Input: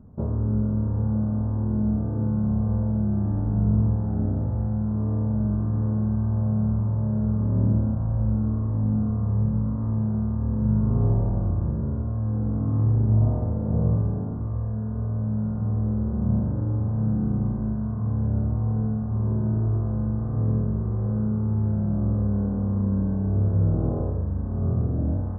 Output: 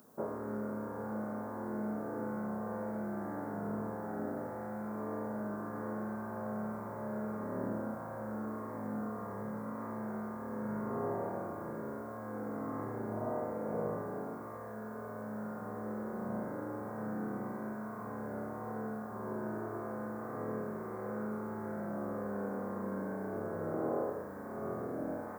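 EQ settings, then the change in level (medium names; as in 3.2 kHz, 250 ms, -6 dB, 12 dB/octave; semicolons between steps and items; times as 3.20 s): high-pass 490 Hz 12 dB/octave; tilt EQ +4.5 dB/octave; peaking EQ 910 Hz -11 dB 2.2 oct; +13.0 dB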